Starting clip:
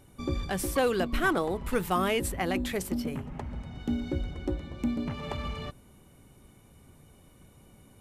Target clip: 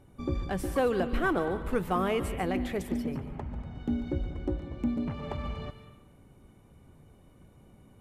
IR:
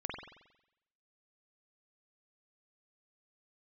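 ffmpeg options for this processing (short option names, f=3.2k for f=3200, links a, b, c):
-filter_complex "[0:a]highshelf=f=2.4k:g=-11.5,asplit=2[a][b];[1:a]atrim=start_sample=2205,highshelf=f=2.1k:g=10.5,adelay=144[c];[b][c]afir=irnorm=-1:irlink=0,volume=-16dB[d];[a][d]amix=inputs=2:normalize=0"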